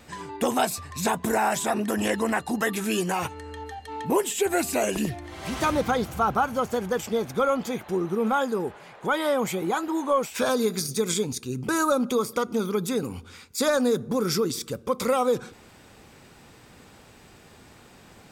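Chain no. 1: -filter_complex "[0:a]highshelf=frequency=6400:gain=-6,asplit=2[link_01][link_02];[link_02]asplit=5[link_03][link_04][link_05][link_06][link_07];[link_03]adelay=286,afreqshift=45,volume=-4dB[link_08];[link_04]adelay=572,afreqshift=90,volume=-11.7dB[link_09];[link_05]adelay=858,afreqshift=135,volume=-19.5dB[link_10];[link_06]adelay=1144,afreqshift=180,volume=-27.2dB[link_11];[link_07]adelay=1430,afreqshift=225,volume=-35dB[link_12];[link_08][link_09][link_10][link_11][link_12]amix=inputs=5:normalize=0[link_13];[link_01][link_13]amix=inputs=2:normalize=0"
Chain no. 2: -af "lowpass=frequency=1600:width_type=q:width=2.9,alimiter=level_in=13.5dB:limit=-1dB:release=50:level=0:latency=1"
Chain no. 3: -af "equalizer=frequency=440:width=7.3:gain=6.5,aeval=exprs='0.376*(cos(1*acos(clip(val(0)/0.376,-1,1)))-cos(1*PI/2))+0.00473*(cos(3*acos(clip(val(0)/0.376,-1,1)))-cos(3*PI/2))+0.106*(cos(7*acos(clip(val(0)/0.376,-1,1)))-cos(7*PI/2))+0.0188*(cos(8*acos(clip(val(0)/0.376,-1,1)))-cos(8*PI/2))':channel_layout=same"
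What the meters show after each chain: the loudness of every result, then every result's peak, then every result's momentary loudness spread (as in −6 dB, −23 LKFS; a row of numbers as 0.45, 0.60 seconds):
−25.0, −12.5, −25.5 LKFS; −8.5, −1.0, −9.0 dBFS; 7, 8, 12 LU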